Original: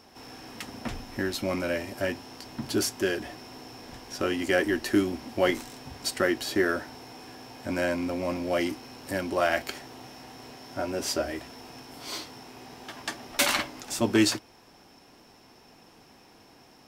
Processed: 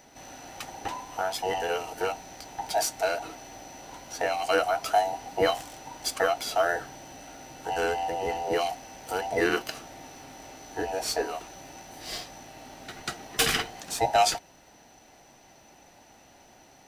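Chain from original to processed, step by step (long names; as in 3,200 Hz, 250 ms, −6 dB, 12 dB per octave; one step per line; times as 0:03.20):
frequency inversion band by band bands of 1,000 Hz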